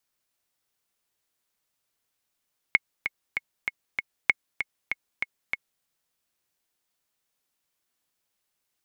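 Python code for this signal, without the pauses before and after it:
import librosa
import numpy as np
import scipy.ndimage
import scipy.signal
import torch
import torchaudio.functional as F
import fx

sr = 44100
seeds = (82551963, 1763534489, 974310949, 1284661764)

y = fx.click_track(sr, bpm=194, beats=5, bars=2, hz=2180.0, accent_db=9.0, level_db=-4.5)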